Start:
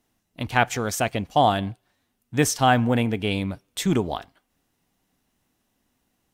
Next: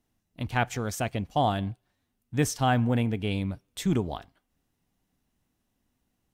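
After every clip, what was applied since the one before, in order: bass shelf 200 Hz +8.5 dB; trim -7.5 dB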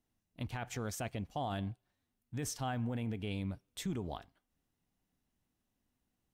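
peak limiter -22 dBFS, peak gain reduction 10.5 dB; trim -7 dB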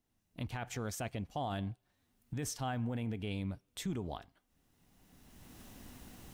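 recorder AGC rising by 21 dB/s

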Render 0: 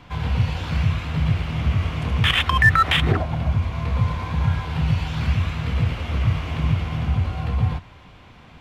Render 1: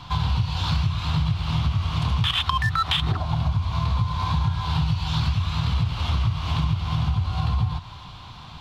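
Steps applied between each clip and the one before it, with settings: graphic EQ 125/250/500/1000/2000/4000 Hz +5/-5/-10/+9/-10/+12 dB; compression 10:1, threshold -23 dBFS, peak gain reduction 14 dB; trim +4 dB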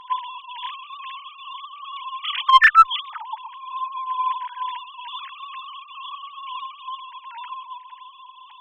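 formants replaced by sine waves; in parallel at -6.5 dB: one-sided clip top -10 dBFS; on the sum: trim -4.5 dB

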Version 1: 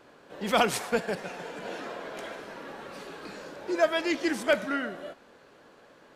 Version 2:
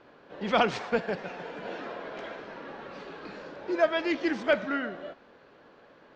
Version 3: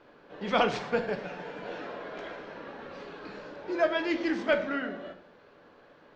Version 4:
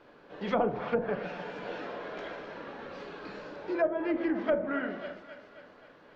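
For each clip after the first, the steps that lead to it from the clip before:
Bessel low-pass 3.6 kHz, order 8
simulated room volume 70 m³, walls mixed, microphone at 0.37 m; trim -2 dB
thinning echo 267 ms, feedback 59%, high-pass 210 Hz, level -15.5 dB; low-pass that closes with the level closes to 730 Hz, closed at -23 dBFS

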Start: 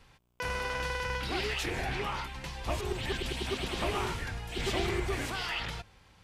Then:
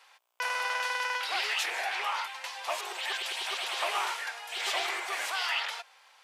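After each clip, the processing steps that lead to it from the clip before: high-pass 660 Hz 24 dB/octave; trim +4.5 dB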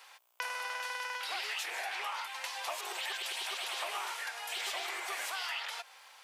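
treble shelf 9.7 kHz +9 dB; compression 4:1, threshold -39 dBFS, peak gain reduction 11 dB; trim +2.5 dB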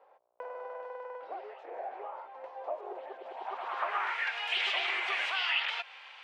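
low-pass sweep 560 Hz -> 2.8 kHz, 3.19–4.36 s; trim +2.5 dB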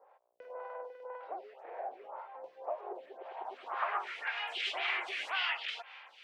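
lamp-driven phase shifter 1.9 Hz

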